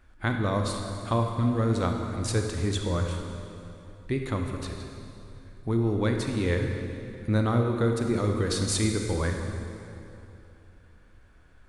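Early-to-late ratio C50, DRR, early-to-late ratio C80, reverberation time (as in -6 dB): 3.5 dB, 3.0 dB, 5.0 dB, 2.8 s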